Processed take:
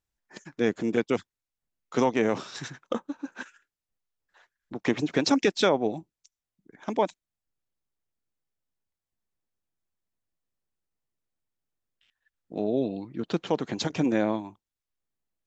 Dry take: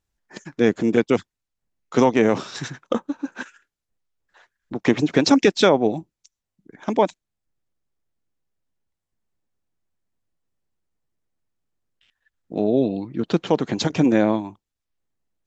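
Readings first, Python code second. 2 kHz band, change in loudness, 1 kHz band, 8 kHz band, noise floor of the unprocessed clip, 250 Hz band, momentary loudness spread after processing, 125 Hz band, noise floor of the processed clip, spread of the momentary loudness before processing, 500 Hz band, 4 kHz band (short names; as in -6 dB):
-5.5 dB, -7.0 dB, -6.0 dB, n/a, -84 dBFS, -7.5 dB, 16 LU, -8.0 dB, under -85 dBFS, 16 LU, -7.0 dB, -5.5 dB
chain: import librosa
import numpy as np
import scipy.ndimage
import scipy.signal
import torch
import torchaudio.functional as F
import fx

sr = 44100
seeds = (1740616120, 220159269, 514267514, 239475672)

y = fx.low_shelf(x, sr, hz=460.0, db=-3.0)
y = y * 10.0 ** (-5.5 / 20.0)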